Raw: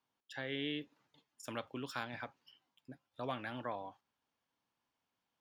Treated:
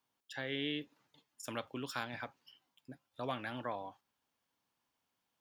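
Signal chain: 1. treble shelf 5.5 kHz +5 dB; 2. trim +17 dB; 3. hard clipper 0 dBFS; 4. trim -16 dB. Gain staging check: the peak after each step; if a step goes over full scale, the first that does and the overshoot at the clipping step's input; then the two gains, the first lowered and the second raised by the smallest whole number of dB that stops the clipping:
-22.5 dBFS, -5.5 dBFS, -5.5 dBFS, -21.5 dBFS; nothing clips

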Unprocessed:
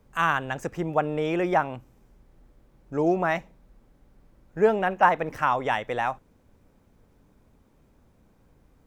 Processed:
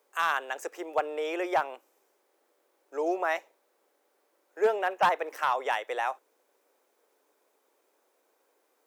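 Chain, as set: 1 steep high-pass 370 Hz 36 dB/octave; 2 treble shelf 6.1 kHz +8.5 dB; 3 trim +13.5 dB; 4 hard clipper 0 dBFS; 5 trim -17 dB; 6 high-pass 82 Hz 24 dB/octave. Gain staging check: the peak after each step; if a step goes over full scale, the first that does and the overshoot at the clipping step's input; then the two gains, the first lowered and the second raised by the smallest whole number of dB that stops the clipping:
-6.5 dBFS, -6.0 dBFS, +7.5 dBFS, 0.0 dBFS, -17.0 dBFS, -14.0 dBFS; step 3, 7.5 dB; step 3 +5.5 dB, step 5 -9 dB

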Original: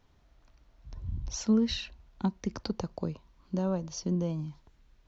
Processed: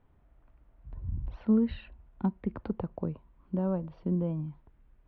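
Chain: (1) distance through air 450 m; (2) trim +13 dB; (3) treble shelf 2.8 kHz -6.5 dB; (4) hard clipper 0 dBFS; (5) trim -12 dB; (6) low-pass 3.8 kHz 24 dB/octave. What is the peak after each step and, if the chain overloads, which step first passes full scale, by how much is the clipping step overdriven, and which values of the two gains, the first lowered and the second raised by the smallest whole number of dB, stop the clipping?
-16.5 dBFS, -3.5 dBFS, -3.5 dBFS, -3.5 dBFS, -15.5 dBFS, -15.5 dBFS; nothing clips

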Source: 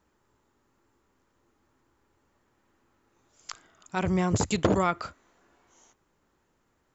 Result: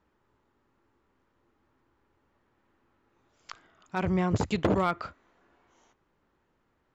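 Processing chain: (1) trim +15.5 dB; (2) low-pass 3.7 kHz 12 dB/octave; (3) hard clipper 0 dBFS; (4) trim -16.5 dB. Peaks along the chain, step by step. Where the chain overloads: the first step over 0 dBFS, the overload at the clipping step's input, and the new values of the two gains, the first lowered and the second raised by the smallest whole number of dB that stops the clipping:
+7.0 dBFS, +7.0 dBFS, 0.0 dBFS, -16.5 dBFS; step 1, 7.0 dB; step 1 +8.5 dB, step 4 -9.5 dB

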